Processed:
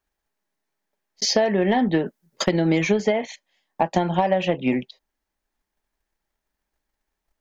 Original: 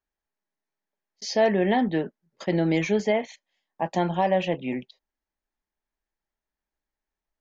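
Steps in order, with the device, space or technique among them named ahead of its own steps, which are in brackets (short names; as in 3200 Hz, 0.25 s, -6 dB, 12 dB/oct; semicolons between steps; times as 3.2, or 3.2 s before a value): 2.06–2.62 high shelf 5200 Hz +10.5 dB; drum-bus smash (transient shaper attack +7 dB, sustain 0 dB; compressor 10:1, threshold -22 dBFS, peak gain reduction 10.5 dB; soft clip -15 dBFS, distortion -21 dB); gain +7.5 dB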